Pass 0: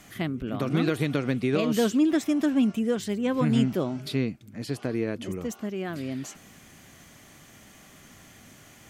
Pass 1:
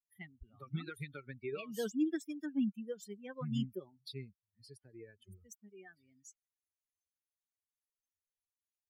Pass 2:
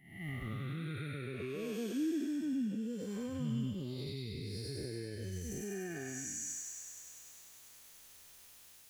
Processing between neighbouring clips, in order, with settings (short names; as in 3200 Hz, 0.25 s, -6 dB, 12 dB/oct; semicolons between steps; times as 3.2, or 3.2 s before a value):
per-bin expansion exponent 3; band shelf 760 Hz -8.5 dB 1.1 oct; gain -7.5 dB
time blur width 0.384 s; recorder AGC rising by 58 dB/s; thin delay 99 ms, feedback 79%, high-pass 2300 Hz, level -4 dB; gain +6.5 dB